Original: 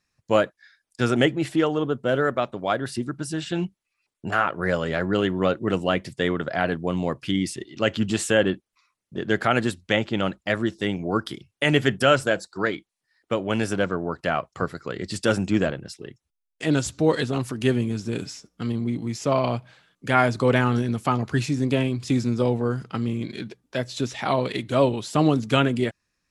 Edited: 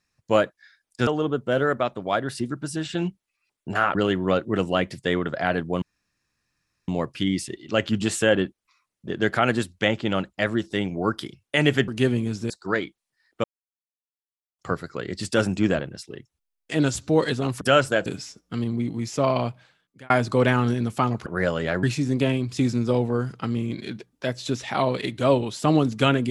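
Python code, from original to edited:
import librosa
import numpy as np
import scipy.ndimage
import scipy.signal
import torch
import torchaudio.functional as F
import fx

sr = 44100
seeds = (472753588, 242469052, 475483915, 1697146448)

y = fx.edit(x, sr, fx.cut(start_s=1.07, length_s=0.57),
    fx.move(start_s=4.52, length_s=0.57, to_s=21.34),
    fx.insert_room_tone(at_s=6.96, length_s=1.06),
    fx.swap(start_s=11.96, length_s=0.45, other_s=17.52, other_length_s=0.62),
    fx.silence(start_s=13.35, length_s=1.15),
    fx.fade_out_span(start_s=19.48, length_s=0.7), tone=tone)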